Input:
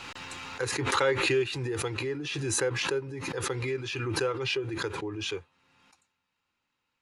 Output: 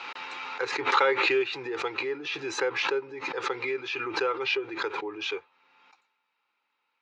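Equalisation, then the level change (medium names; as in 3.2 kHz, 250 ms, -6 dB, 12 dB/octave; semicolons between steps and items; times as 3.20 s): distance through air 69 m; cabinet simulation 370–6100 Hz, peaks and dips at 420 Hz +4 dB, 860 Hz +7 dB, 1.3 kHz +6 dB, 2.3 kHz +7 dB, 3.8 kHz +3 dB; 0.0 dB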